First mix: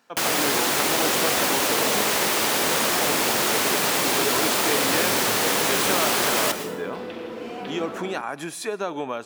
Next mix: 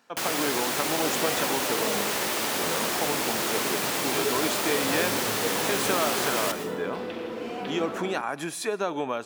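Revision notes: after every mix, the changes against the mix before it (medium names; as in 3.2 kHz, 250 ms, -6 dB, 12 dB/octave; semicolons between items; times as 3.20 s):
first sound -6.0 dB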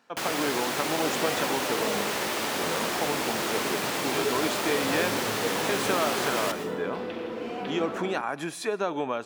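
master: add treble shelf 6.2 kHz -7 dB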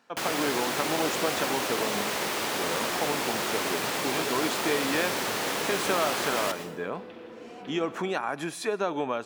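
second sound -10.0 dB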